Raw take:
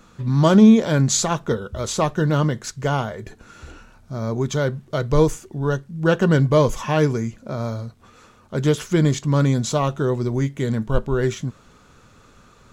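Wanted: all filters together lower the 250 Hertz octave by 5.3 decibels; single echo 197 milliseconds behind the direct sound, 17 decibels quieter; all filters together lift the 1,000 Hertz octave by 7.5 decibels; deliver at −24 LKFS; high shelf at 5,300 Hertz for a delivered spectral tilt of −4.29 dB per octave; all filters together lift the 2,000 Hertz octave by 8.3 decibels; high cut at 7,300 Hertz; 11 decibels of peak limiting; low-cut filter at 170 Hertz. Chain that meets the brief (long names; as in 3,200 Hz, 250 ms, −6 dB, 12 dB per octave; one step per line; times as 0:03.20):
high-pass filter 170 Hz
low-pass filter 7,300 Hz
parametric band 250 Hz −5.5 dB
parametric band 1,000 Hz +7 dB
parametric band 2,000 Hz +8 dB
high-shelf EQ 5,300 Hz +5.5 dB
brickwall limiter −10 dBFS
single-tap delay 197 ms −17 dB
level −1 dB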